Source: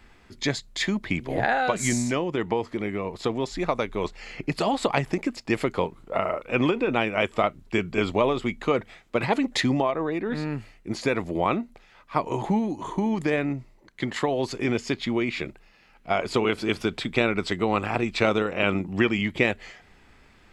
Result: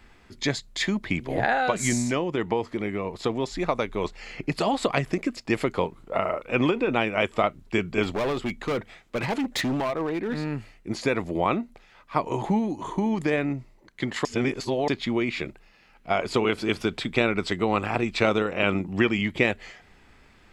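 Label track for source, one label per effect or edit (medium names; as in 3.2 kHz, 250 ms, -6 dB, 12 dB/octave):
4.850000	5.430000	band-stop 860 Hz, Q 5.1
8.030000	10.520000	overload inside the chain gain 23 dB
14.250000	14.880000	reverse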